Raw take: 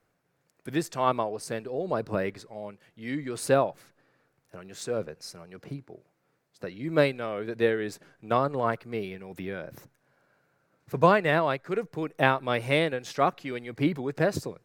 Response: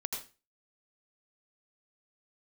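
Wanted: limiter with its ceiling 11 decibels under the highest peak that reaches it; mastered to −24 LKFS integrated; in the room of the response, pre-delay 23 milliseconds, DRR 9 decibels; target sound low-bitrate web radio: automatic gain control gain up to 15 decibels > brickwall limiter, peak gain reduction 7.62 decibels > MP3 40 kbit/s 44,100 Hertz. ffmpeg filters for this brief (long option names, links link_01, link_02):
-filter_complex "[0:a]alimiter=limit=-14.5dB:level=0:latency=1,asplit=2[link_01][link_02];[1:a]atrim=start_sample=2205,adelay=23[link_03];[link_02][link_03]afir=irnorm=-1:irlink=0,volume=-10.5dB[link_04];[link_01][link_04]amix=inputs=2:normalize=0,dynaudnorm=maxgain=15dB,alimiter=limit=-19dB:level=0:latency=1,volume=9dB" -ar 44100 -c:a libmp3lame -b:a 40k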